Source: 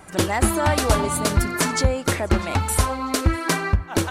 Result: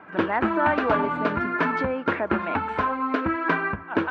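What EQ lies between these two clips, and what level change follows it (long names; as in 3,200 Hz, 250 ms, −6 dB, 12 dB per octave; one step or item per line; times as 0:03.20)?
loudspeaker in its box 350–2,000 Hz, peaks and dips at 380 Hz −7 dB, 550 Hz −9 dB, 780 Hz −9 dB, 1,200 Hz −5 dB, 2,000 Hz −8 dB
+7.0 dB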